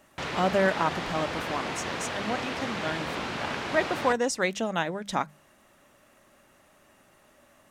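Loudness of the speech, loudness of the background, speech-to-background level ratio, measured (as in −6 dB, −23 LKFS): −30.0 LKFS, −32.5 LKFS, 2.5 dB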